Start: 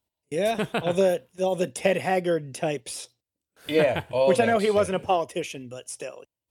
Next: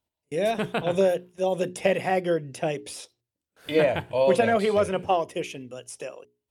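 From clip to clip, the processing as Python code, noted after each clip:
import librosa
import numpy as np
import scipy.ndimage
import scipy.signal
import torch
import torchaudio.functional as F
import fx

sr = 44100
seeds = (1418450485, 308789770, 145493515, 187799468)

y = fx.high_shelf(x, sr, hz=4800.0, db=-5.0)
y = fx.hum_notches(y, sr, base_hz=60, count=7)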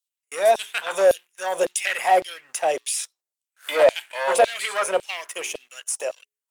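y = fx.high_shelf_res(x, sr, hz=5700.0, db=6.5, q=1.5)
y = fx.leveller(y, sr, passes=2)
y = fx.filter_lfo_highpass(y, sr, shape='saw_down', hz=1.8, low_hz=540.0, high_hz=4200.0, q=1.9)
y = y * librosa.db_to_amplitude(-1.0)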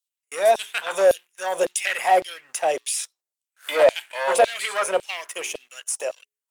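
y = x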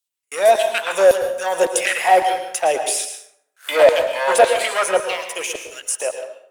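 y = fx.rev_plate(x, sr, seeds[0], rt60_s=0.72, hf_ratio=0.6, predelay_ms=100, drr_db=6.5)
y = y * librosa.db_to_amplitude(4.0)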